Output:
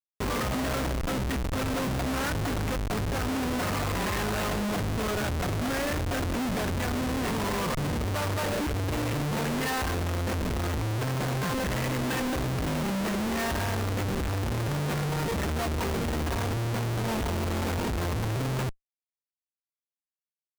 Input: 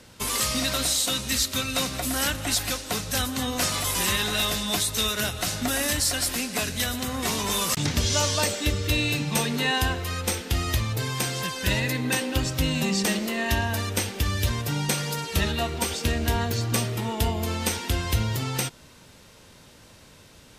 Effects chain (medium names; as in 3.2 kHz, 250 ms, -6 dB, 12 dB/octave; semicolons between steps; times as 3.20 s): low-pass 2.1 kHz 24 dB/octave; Schmitt trigger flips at -35 dBFS